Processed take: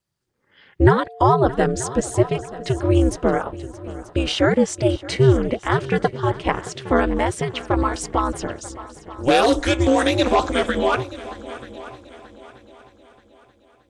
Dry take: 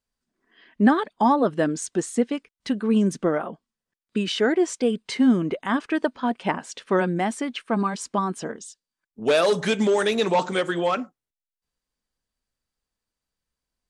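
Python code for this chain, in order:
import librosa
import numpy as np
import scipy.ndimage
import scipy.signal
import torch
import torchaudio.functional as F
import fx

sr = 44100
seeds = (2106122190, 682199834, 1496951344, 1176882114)

y = fx.dmg_tone(x, sr, hz=580.0, level_db=-40.0, at=(0.91, 2.78), fade=0.02)
y = fx.echo_heads(y, sr, ms=311, heads='second and third', feedback_pct=42, wet_db=-18)
y = y * np.sin(2.0 * np.pi * 130.0 * np.arange(len(y)) / sr)
y = y * 10.0 ** (6.5 / 20.0)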